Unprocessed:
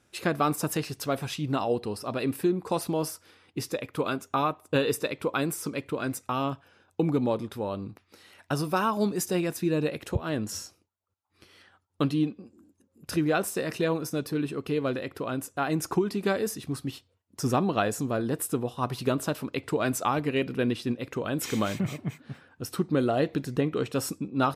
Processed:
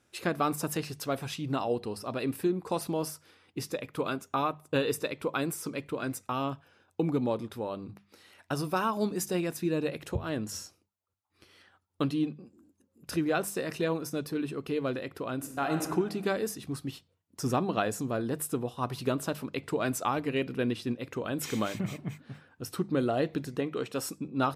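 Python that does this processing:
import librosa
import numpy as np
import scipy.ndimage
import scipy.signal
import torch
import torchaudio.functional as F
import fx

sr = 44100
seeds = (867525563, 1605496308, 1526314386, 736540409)

y = fx.reverb_throw(x, sr, start_s=15.35, length_s=0.47, rt60_s=1.3, drr_db=3.5)
y = fx.low_shelf(y, sr, hz=160.0, db=-10.5, at=(23.49, 24.18))
y = fx.hum_notches(y, sr, base_hz=50, count=4)
y = F.gain(torch.from_numpy(y), -3.0).numpy()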